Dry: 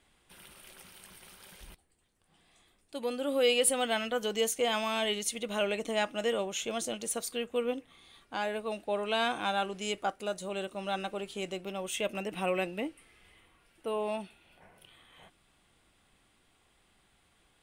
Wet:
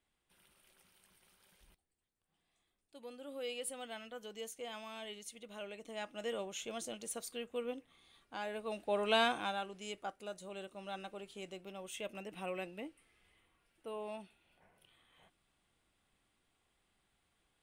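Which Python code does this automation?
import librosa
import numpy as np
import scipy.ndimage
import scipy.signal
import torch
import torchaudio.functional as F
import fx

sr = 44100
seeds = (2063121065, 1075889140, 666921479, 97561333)

y = fx.gain(x, sr, db=fx.line((5.79, -16.0), (6.34, -8.5), (8.44, -8.5), (9.16, 0.5), (9.66, -10.5)))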